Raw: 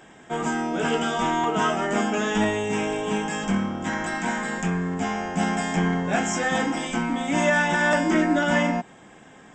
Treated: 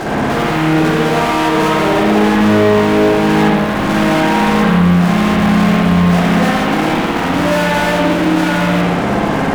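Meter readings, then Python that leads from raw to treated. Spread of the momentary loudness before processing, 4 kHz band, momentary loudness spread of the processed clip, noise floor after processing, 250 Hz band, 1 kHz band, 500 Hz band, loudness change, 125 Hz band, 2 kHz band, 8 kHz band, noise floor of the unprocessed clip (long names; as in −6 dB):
7 LU, +11.5 dB, 4 LU, −16 dBFS, +13.0 dB, +10.5 dB, +12.0 dB, +11.5 dB, +15.5 dB, +8.0 dB, +4.0 dB, −49 dBFS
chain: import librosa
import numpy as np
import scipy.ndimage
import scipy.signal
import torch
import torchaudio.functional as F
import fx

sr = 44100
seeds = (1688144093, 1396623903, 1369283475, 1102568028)

p1 = scipy.signal.sosfilt(scipy.signal.butter(2, 1200.0, 'lowpass', fs=sr, output='sos'), x)
p2 = fx.over_compress(p1, sr, threshold_db=-35.0, ratio=-1.0)
p3 = p1 + (p2 * librosa.db_to_amplitude(3.0))
p4 = fx.fuzz(p3, sr, gain_db=43.0, gate_db=-48.0)
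p5 = fx.quant_dither(p4, sr, seeds[0], bits=8, dither='triangular')
p6 = fx.rev_spring(p5, sr, rt60_s=1.2, pass_ms=(57,), chirp_ms=65, drr_db=-5.0)
y = p6 * librosa.db_to_amplitude(-6.0)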